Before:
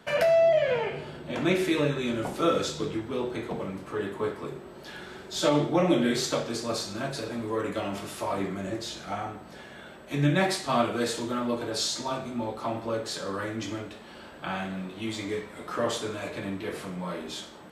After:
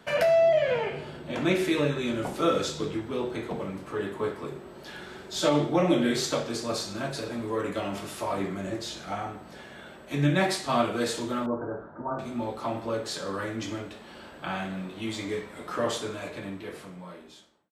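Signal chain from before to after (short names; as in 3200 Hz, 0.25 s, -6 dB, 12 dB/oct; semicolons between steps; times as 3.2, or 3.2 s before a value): ending faded out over 1.82 s; 11.46–12.19 Chebyshev low-pass 1500 Hz, order 5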